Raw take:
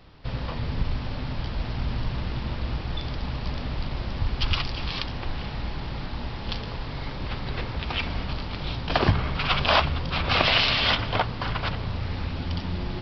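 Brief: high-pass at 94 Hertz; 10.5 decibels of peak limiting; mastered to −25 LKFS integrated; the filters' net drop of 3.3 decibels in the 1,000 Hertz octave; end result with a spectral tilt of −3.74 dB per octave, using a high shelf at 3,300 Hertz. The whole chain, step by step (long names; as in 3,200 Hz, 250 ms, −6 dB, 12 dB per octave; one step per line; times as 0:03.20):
high-pass filter 94 Hz
parametric band 1,000 Hz −3.5 dB
high-shelf EQ 3,300 Hz −7.5 dB
level +7.5 dB
brickwall limiter −9.5 dBFS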